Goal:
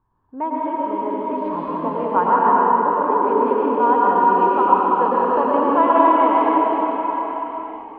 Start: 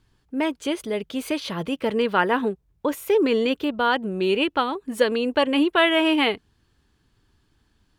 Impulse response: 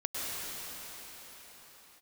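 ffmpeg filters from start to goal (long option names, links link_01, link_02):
-filter_complex "[0:a]lowpass=frequency=1000:width_type=q:width=7.6[link_01];[1:a]atrim=start_sample=2205[link_02];[link_01][link_02]afir=irnorm=-1:irlink=0,volume=-6.5dB"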